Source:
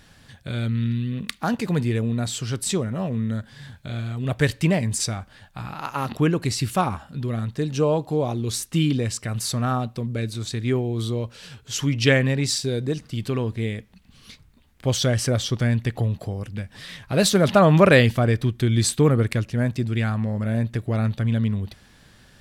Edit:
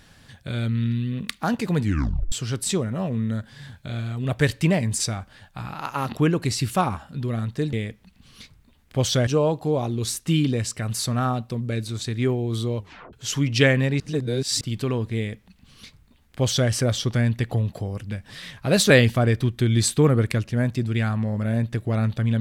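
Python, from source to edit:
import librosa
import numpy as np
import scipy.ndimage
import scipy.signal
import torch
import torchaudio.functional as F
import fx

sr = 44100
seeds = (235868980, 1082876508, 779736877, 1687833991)

y = fx.edit(x, sr, fx.tape_stop(start_s=1.81, length_s=0.51),
    fx.tape_stop(start_s=11.24, length_s=0.35),
    fx.reverse_span(start_s=12.46, length_s=0.61),
    fx.duplicate(start_s=13.62, length_s=1.54, to_s=7.73),
    fx.cut(start_s=17.36, length_s=0.55), tone=tone)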